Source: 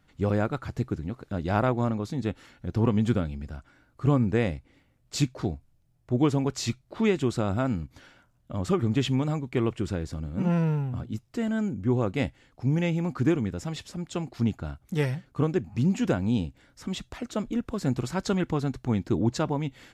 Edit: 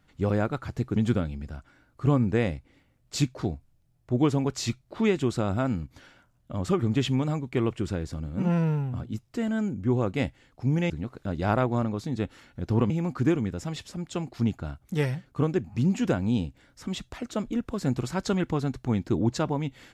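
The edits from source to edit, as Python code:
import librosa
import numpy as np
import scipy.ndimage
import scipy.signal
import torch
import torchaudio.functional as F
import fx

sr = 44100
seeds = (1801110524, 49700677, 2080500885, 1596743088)

y = fx.edit(x, sr, fx.move(start_s=0.96, length_s=2.0, to_s=12.9), tone=tone)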